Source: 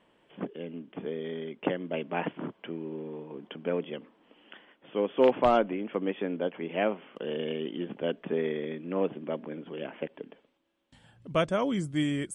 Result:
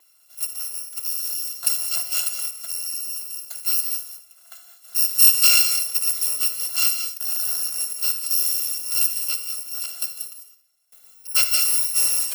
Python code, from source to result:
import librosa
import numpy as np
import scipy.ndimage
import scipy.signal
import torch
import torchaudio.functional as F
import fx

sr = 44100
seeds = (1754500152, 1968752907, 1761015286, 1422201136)

p1 = fx.bit_reversed(x, sr, seeds[0], block=256)
p2 = scipy.signal.sosfilt(scipy.signal.butter(4, 320.0, 'highpass', fs=sr, output='sos'), p1)
p3 = fx.high_shelf(p2, sr, hz=7900.0, db=5.0)
p4 = p3 + fx.room_early_taps(p3, sr, ms=(57, 76), db=(-13.0, -16.5), dry=0)
p5 = fx.rev_gated(p4, sr, seeds[1], gate_ms=230, shape='rising', drr_db=7.5)
y = F.gain(torch.from_numpy(p5), 4.0).numpy()